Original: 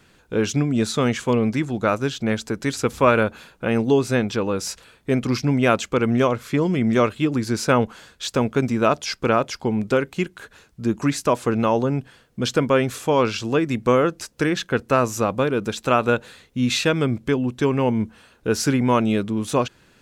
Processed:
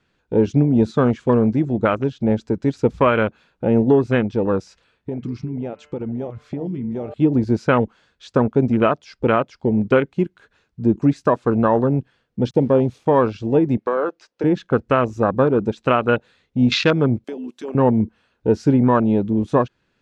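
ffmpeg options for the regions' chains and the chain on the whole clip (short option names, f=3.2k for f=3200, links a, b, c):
-filter_complex "[0:a]asettb=1/sr,asplit=3[a][b][c];[a]atrim=end=4.624[d];[b]atrim=start=4.62:end=7.14,asetpts=PTS-STARTPTS,afade=t=in:d=0.004:c=qsin,afade=t=out:st=2.516:d=0.004:c=qsin,lowpass=11k,bandreject=f=148.5:t=h:w=4,bandreject=f=297:t=h:w=4,bandreject=f=445.5:t=h:w=4,bandreject=f=594:t=h:w=4,bandreject=f=742.5:t=h:w=4,bandreject=f=891:t=h:w=4,bandreject=f=1.0395k:t=h:w=4,bandreject=f=1.188k:t=h:w=4,bandreject=f=1.3365k:t=h:w=4,bandreject=f=1.485k:t=h:w=4,bandreject=f=1.6335k:t=h:w=4,bandreject=f=1.782k:t=h:w=4,bandreject=f=1.9305k:t=h:w=4,bandreject=f=2.079k:t=h:w=4,bandreject=f=2.2275k:t=h:w=4,bandreject=f=2.376k:t=h:w=4,bandreject=f=2.5245k:t=h:w=4,bandreject=f=2.673k:t=h:w=4,bandreject=f=2.8215k:t=h:w=4,bandreject=f=2.97k:t=h:w=4,acompressor=threshold=-27dB:ratio=8:attack=3.2:release=140:knee=1:detection=peak[e];[c]atrim=start=7.136[f];[d][e]acrossfade=d=0.004:c1=hsin:c2=qsin[g];[g][f]acrossfade=d=0.004:c1=qsin:c2=hsin,asettb=1/sr,asplit=3[h][i][j];[h]atrim=end=12.504[k];[i]atrim=start=12.5:end=13.06,asetpts=PTS-STARTPTS,afade=t=in:d=0.004:c=qsin,afade=t=out:st=0.556:d=0.004:c=qsin,equalizer=f=1.4k:t=o:w=0.98:g=-15,bandreject=f=7.5k:w=8.7,aeval=exprs='val(0)*gte(abs(val(0)),0.015)':c=same[l];[j]atrim=start=13.056[m];[k][l]acrossfade=d=0.004:c1=hsin:c2=qsin[n];[n][m]acrossfade=d=0.004:c1=qsin:c2=hsin,asettb=1/sr,asplit=3[o][p][q];[o]atrim=end=13.774[r];[p]atrim=start=13.77:end=14.44,asetpts=PTS-STARTPTS,afade=t=in:d=0.004:c=qsin,afade=t=out:st=0.666:d=0.004:c=qsin,acrossover=split=330 6900:gain=0.0891 1 0.178[s][t][u];[s][t][u]amix=inputs=3:normalize=0,acompressor=threshold=-22dB:ratio=3:attack=3.2:release=140:knee=1:detection=peak[v];[q]atrim=start=14.436[w];[r][v]acrossfade=d=0.004:c1=hsin:c2=qsin[x];[x][w]acrossfade=d=0.004:c1=qsin:c2=hsin,asettb=1/sr,asplit=3[y][z][aa];[y]atrim=end=17.244[ab];[z]atrim=start=17.24:end=17.75,asetpts=PTS-STARTPTS,afade=t=in:d=0.004:c=qsin,afade=t=out:st=0.506:d=0.004:c=qsin,highpass=f=230:w=0.5412,highpass=f=230:w=1.3066,acompressor=threshold=-24dB:ratio=12:attack=3.2:release=140:knee=1:detection=peak,aemphasis=mode=production:type=riaa[ac];[aa]atrim=start=17.746[ad];[ab][ac]acrossfade=d=0.004:c1=hsin:c2=qsin[ae];[ae][ad]acrossfade=d=0.004:c1=qsin:c2=hsin,afwtdn=0.0562,lowpass=4.9k,alimiter=limit=-10dB:level=0:latency=1:release=483,volume=5dB"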